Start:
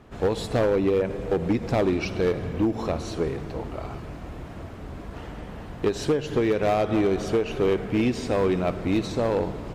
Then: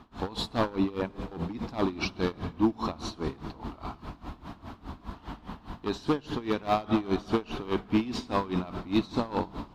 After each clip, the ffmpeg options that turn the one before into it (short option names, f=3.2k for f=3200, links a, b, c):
-af "equalizer=f=125:t=o:w=1:g=-4,equalizer=f=250:t=o:w=1:g=6,equalizer=f=500:t=o:w=1:g=-10,equalizer=f=1k:t=o:w=1:g=10,equalizer=f=2k:t=o:w=1:g=-5,equalizer=f=4k:t=o:w=1:g=8,equalizer=f=8k:t=o:w=1:g=-6,aeval=exprs='val(0)*pow(10,-19*(0.5-0.5*cos(2*PI*4.9*n/s))/20)':c=same"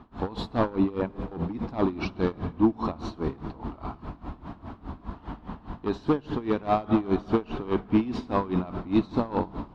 -af "lowpass=f=1.3k:p=1,volume=3.5dB"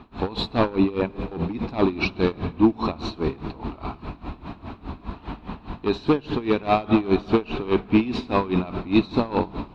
-af "equalizer=f=400:t=o:w=0.33:g=3,equalizer=f=2.5k:t=o:w=0.33:g=11,equalizer=f=4k:t=o:w=0.33:g=9,volume=3.5dB"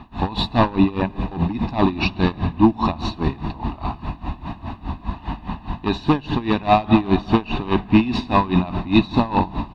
-af "aecho=1:1:1.1:0.64,volume=3.5dB"